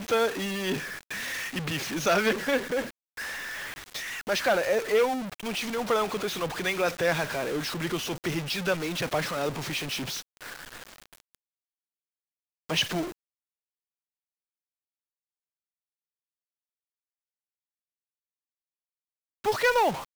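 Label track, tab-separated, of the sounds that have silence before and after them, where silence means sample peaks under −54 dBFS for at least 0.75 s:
12.690000	13.120000	sound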